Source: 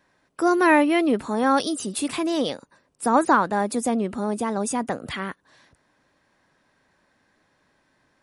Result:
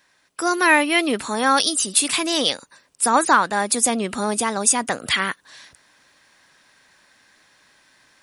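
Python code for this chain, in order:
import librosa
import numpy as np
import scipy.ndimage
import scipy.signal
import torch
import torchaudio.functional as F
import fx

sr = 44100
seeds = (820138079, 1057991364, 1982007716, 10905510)

p1 = fx.tilt_shelf(x, sr, db=-8.5, hz=1300.0)
p2 = fx.rider(p1, sr, range_db=10, speed_s=0.5)
p3 = p1 + F.gain(torch.from_numpy(p2), 0.5).numpy()
y = F.gain(torch.from_numpy(p3), -1.0).numpy()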